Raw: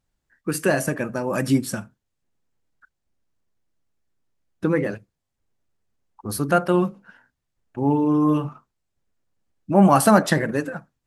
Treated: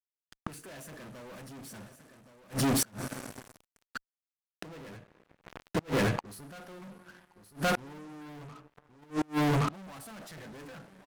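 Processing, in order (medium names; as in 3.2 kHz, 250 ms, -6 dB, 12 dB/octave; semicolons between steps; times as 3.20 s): reverse; compression 6:1, threshold -28 dBFS, peak gain reduction 17 dB; reverse; vibrato 1.4 Hz 43 cents; two-slope reverb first 0.2 s, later 4.2 s, from -22 dB, DRR 9 dB; fuzz box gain 45 dB, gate -52 dBFS; on a send: delay 1121 ms -11.5 dB; on the sum: inverted gate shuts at -21 dBFS, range -32 dB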